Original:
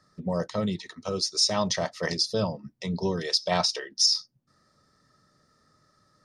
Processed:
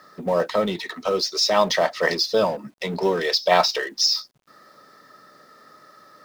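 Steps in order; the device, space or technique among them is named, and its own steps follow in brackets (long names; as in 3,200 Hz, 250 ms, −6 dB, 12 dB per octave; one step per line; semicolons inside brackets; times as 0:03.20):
phone line with mismatched companding (band-pass filter 360–3,500 Hz; mu-law and A-law mismatch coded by mu)
level +9 dB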